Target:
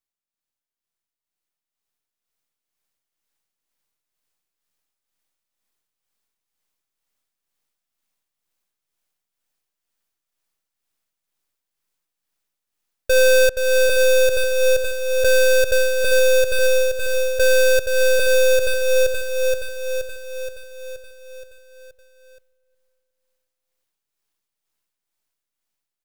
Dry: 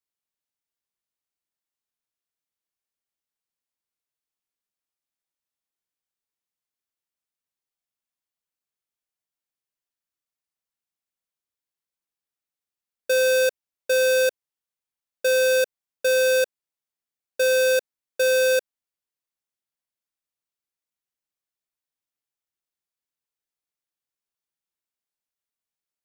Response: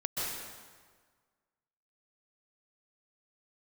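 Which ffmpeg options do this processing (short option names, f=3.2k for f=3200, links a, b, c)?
-filter_complex "[0:a]aeval=exprs='if(lt(val(0),0),0.251*val(0),val(0))':c=same,asplit=2[a][b];[b]adelay=363,lowpass=f=1.6k:p=1,volume=-20.5dB,asplit=2[c][d];[d]adelay=363,lowpass=f=1.6k:p=1,volume=0.53,asplit=2[e][f];[f]adelay=363,lowpass=f=1.6k:p=1,volume=0.53,asplit=2[g][h];[h]adelay=363,lowpass=f=1.6k:p=1,volume=0.53[i];[c][e][g][i]amix=inputs=4:normalize=0[j];[a][j]amix=inputs=2:normalize=0,dynaudnorm=f=240:g=17:m=9dB,tremolo=f=2.1:d=0.51,asplit=2[k][l];[l]aecho=0:1:474|948|1422|1896|2370|2844|3318|3792:0.473|0.274|0.159|0.0923|0.0535|0.0311|0.018|0.0104[m];[k][m]amix=inputs=2:normalize=0,alimiter=level_in=13dB:limit=-1dB:release=50:level=0:latency=1,volume=-8.5dB"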